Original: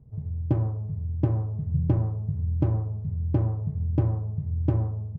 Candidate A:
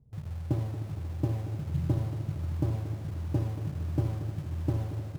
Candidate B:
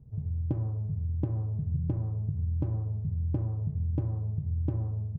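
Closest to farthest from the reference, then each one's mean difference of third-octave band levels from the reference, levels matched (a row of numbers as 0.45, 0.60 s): B, A; 1.5, 9.5 dB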